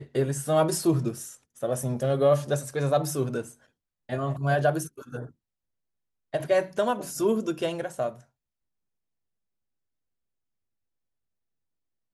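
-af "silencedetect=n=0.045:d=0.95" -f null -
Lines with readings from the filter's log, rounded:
silence_start: 5.20
silence_end: 6.34 | silence_duration: 1.14
silence_start: 8.09
silence_end: 12.14 | silence_duration: 4.05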